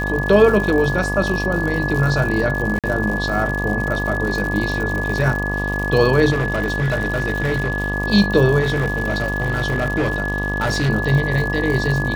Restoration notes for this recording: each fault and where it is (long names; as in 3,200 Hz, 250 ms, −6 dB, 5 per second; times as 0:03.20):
mains buzz 50 Hz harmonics 24 −24 dBFS
surface crackle 130 per second −24 dBFS
whistle 1,700 Hz −23 dBFS
0:02.79–0:02.84: drop-out 47 ms
0:06.31–0:07.94: clipping −15.5 dBFS
0:08.61–0:10.90: clipping −15 dBFS